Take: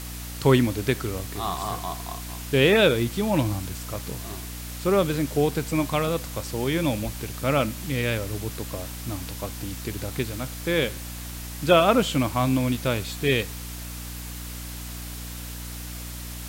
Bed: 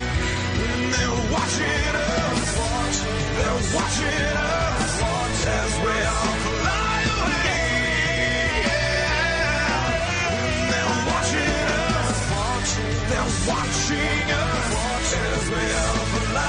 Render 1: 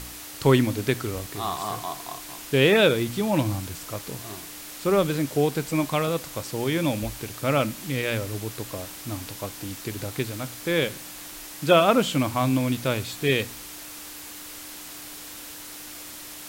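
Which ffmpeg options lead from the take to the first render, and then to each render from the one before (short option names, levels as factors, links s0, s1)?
-af "bandreject=f=60:t=h:w=4,bandreject=f=120:t=h:w=4,bandreject=f=180:t=h:w=4,bandreject=f=240:t=h:w=4"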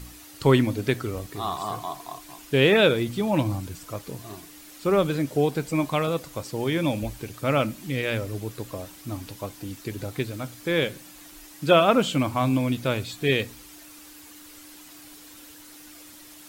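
-af "afftdn=nr=9:nf=-40"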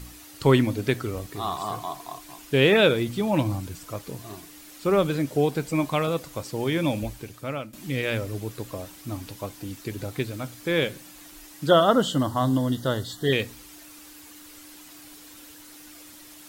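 -filter_complex "[0:a]asettb=1/sr,asplit=3[s0][s1][s2];[s0]atrim=end=11.674[s3];[s1]atrim=start=11.67:end=13.33,asetpts=PTS-STARTPTS,afade=t=in:d=0.004:c=qsin,afade=t=out:st=1.656:d=0.004:c=qsin,asuperstop=centerf=2400:order=12:qfactor=3[s4];[s2]atrim=start=13.326[s5];[s3][s4]acrossfade=d=0.004:c1=hsin:c2=qsin[s6];[s6][s5]acrossfade=d=0.004:c1=qsin:c2=hsin,asplit=2[s7][s8];[s7]atrim=end=7.73,asetpts=PTS-STARTPTS,afade=t=out:st=7:d=0.73:silence=0.133352[s9];[s8]atrim=start=7.73,asetpts=PTS-STARTPTS,afade=t=in:d=0.004:c=hsin:silence=0.133352[s10];[s9][s10]concat=n=2:v=0:a=1"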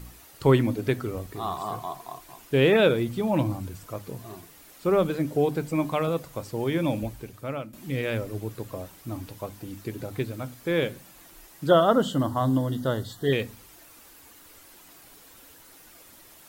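-af "equalizer=f=5200:w=0.35:g=-6.5,bandreject=f=50:t=h:w=6,bandreject=f=100:t=h:w=6,bandreject=f=150:t=h:w=6,bandreject=f=200:t=h:w=6,bandreject=f=250:t=h:w=6,bandreject=f=300:t=h:w=6"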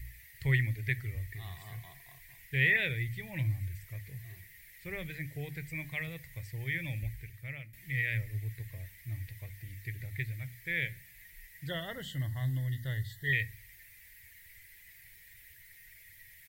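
-af "firequalizer=gain_entry='entry(110,0);entry(230,-27);entry(380,-23);entry(640,-24);entry(1300,-27);entry(1900,9);entry(2800,-8);entry(6600,-12);entry(14000,-3)':delay=0.05:min_phase=1"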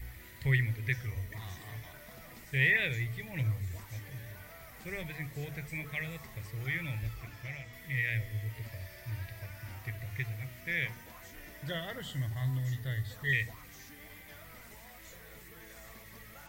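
-filter_complex "[1:a]volume=0.0282[s0];[0:a][s0]amix=inputs=2:normalize=0"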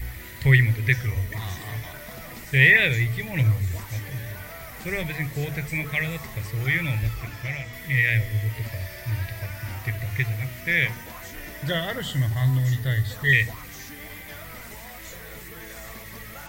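-af "volume=3.76"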